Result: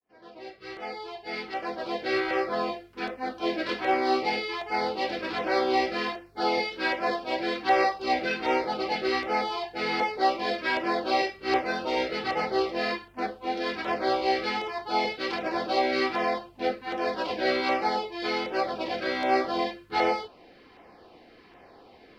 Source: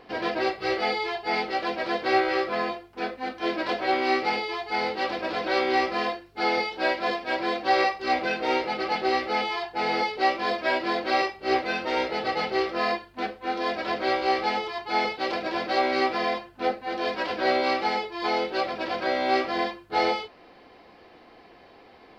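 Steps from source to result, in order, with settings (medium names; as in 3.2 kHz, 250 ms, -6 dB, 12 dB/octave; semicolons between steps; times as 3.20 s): fade-in on the opening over 2.69 s; LFO notch saw down 1.3 Hz 500–5000 Hz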